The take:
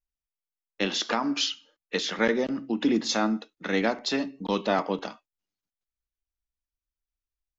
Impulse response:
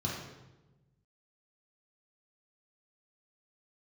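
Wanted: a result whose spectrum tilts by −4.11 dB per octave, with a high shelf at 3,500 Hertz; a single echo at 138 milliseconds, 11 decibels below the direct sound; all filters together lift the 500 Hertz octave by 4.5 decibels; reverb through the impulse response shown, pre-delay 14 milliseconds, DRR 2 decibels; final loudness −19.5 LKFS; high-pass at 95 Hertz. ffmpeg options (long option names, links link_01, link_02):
-filter_complex "[0:a]highpass=95,equalizer=frequency=500:width_type=o:gain=5.5,highshelf=frequency=3500:gain=-3.5,aecho=1:1:138:0.282,asplit=2[link_01][link_02];[1:a]atrim=start_sample=2205,adelay=14[link_03];[link_02][link_03]afir=irnorm=-1:irlink=0,volume=-6.5dB[link_04];[link_01][link_04]amix=inputs=2:normalize=0,volume=2.5dB"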